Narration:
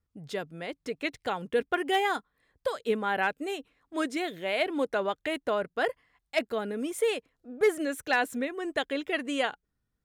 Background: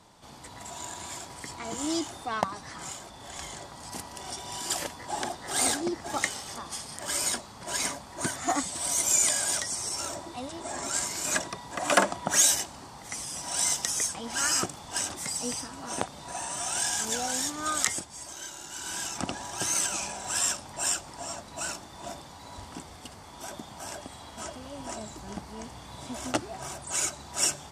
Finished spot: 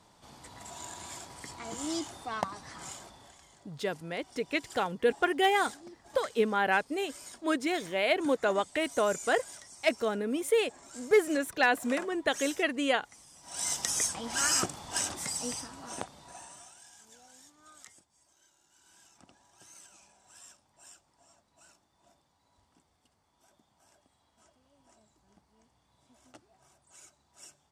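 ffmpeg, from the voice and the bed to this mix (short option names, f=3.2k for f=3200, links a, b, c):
-filter_complex "[0:a]adelay=3500,volume=1dB[a];[1:a]volume=13.5dB,afade=t=out:st=3.05:d=0.33:silence=0.188365,afade=t=in:st=13.41:d=0.52:silence=0.125893,afade=t=out:st=15.08:d=1.68:silence=0.0530884[b];[a][b]amix=inputs=2:normalize=0"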